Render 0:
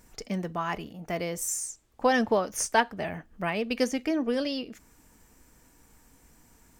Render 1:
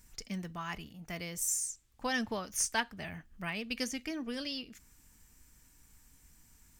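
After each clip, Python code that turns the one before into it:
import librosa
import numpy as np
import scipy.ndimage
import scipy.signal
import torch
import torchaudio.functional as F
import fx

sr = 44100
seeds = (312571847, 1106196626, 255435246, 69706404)

y = fx.peak_eq(x, sr, hz=530.0, db=-14.0, octaves=2.6)
y = y * 10.0 ** (-1.0 / 20.0)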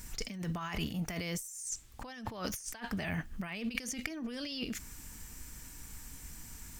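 y = fx.over_compress(x, sr, threshold_db=-46.0, ratio=-1.0)
y = y * 10.0 ** (6.5 / 20.0)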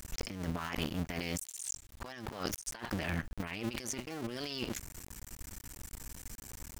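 y = fx.cycle_switch(x, sr, every=2, mode='muted')
y = y * 10.0 ** (3.0 / 20.0)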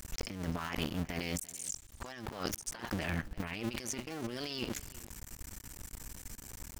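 y = x + 10.0 ** (-20.5 / 20.0) * np.pad(x, (int(341 * sr / 1000.0), 0))[:len(x)]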